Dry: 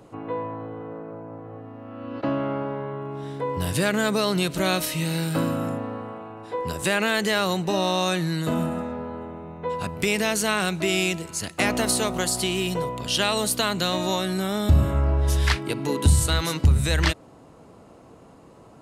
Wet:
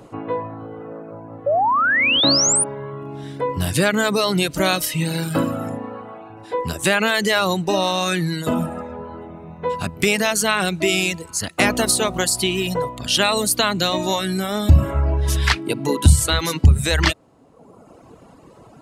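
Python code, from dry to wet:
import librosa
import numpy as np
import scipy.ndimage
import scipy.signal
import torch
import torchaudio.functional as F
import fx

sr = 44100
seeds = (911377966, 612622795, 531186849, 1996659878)

y = fx.dereverb_blind(x, sr, rt60_s=1.1)
y = fx.spec_paint(y, sr, seeds[0], shape='rise', start_s=1.46, length_s=1.18, low_hz=540.0, high_hz=9900.0, level_db=-23.0)
y = y * librosa.db_to_amplitude(6.0)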